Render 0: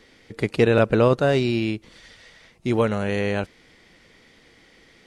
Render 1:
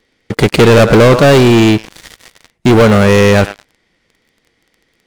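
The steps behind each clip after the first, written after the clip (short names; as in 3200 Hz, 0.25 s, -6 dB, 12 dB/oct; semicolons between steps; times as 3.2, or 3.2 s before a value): narrowing echo 0.108 s, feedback 41%, band-pass 1200 Hz, level -15.5 dB; sample leveller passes 5; gain +3 dB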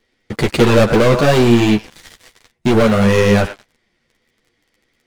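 chorus voices 6, 1.2 Hz, delay 11 ms, depth 3.2 ms; gain -2.5 dB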